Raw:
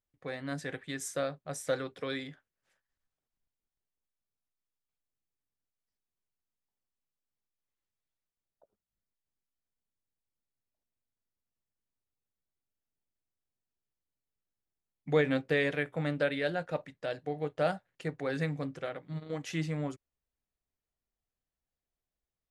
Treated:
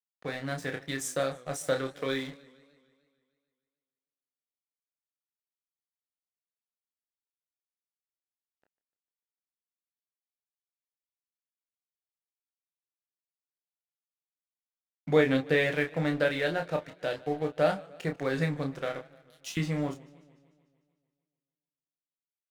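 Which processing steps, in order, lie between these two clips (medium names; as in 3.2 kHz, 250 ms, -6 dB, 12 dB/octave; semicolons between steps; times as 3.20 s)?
19.01–19.57 s: inverse Chebyshev high-pass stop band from 1.4 kHz, stop band 40 dB; in parallel at -1.5 dB: compression, threshold -43 dBFS, peak gain reduction 20 dB; on the sum: crossover distortion -48.5 dBFS; early reflections 20 ms -11 dB, 30 ms -6.5 dB; modulated delay 149 ms, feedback 60%, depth 135 cents, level -22 dB; trim +2 dB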